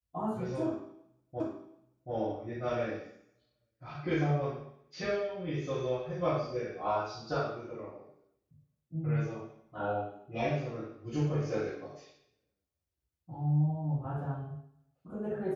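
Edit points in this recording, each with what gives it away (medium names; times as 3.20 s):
1.40 s: repeat of the last 0.73 s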